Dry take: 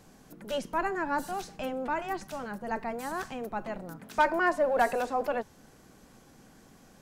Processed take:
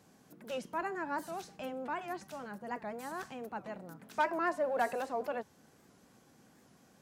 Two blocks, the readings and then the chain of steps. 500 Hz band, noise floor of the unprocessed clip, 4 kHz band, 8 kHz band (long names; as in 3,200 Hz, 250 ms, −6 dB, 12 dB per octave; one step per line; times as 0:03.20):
−6.5 dB, −57 dBFS, −7.5 dB, −6.5 dB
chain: high-pass filter 92 Hz 12 dB per octave
wow of a warped record 78 rpm, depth 160 cents
level −6.5 dB